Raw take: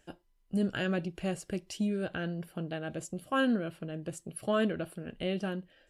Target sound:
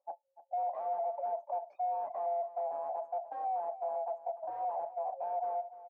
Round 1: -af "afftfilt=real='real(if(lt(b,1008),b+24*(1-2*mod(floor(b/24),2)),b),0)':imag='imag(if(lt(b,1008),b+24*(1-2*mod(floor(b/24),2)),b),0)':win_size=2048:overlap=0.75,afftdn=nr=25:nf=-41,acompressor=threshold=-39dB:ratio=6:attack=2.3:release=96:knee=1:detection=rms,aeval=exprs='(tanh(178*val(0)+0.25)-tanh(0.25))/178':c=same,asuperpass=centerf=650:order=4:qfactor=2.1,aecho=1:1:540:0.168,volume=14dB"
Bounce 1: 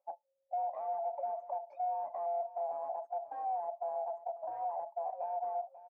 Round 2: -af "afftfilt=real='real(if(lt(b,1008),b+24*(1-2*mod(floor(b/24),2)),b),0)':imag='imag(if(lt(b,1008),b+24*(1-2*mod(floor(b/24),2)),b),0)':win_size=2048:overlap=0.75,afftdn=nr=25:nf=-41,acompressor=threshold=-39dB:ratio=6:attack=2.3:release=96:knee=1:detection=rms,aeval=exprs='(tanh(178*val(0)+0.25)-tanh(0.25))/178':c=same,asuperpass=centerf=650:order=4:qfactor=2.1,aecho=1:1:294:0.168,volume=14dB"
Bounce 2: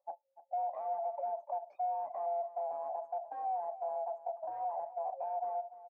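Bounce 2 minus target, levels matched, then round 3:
compressor: peak gain reduction +10 dB
-af "afftfilt=real='real(if(lt(b,1008),b+24*(1-2*mod(floor(b/24),2)),b),0)':imag='imag(if(lt(b,1008),b+24*(1-2*mod(floor(b/24),2)),b),0)':win_size=2048:overlap=0.75,afftdn=nr=25:nf=-41,acompressor=threshold=-27dB:ratio=6:attack=2.3:release=96:knee=1:detection=rms,aeval=exprs='(tanh(178*val(0)+0.25)-tanh(0.25))/178':c=same,asuperpass=centerf=650:order=4:qfactor=2.1,aecho=1:1:294:0.168,volume=14dB"

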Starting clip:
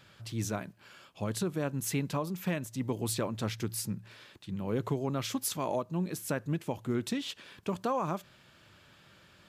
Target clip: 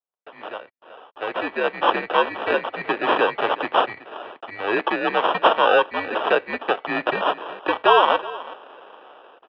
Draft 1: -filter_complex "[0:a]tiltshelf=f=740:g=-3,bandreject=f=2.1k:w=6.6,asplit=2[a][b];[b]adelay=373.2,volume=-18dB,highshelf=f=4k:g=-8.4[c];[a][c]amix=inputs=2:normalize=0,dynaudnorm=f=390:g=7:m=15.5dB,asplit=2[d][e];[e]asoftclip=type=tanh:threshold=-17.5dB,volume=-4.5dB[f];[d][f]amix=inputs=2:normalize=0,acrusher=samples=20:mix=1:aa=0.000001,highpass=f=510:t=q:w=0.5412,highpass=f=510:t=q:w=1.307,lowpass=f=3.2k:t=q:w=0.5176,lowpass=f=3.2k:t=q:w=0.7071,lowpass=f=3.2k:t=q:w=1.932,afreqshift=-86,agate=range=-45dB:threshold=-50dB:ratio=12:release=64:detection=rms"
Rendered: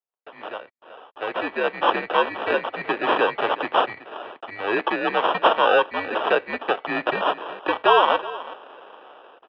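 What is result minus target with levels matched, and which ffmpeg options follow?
soft clip: distortion +9 dB
-filter_complex "[0:a]tiltshelf=f=740:g=-3,bandreject=f=2.1k:w=6.6,asplit=2[a][b];[b]adelay=373.2,volume=-18dB,highshelf=f=4k:g=-8.4[c];[a][c]amix=inputs=2:normalize=0,dynaudnorm=f=390:g=7:m=15.5dB,asplit=2[d][e];[e]asoftclip=type=tanh:threshold=-9.5dB,volume=-4.5dB[f];[d][f]amix=inputs=2:normalize=0,acrusher=samples=20:mix=1:aa=0.000001,highpass=f=510:t=q:w=0.5412,highpass=f=510:t=q:w=1.307,lowpass=f=3.2k:t=q:w=0.5176,lowpass=f=3.2k:t=q:w=0.7071,lowpass=f=3.2k:t=q:w=1.932,afreqshift=-86,agate=range=-45dB:threshold=-50dB:ratio=12:release=64:detection=rms"

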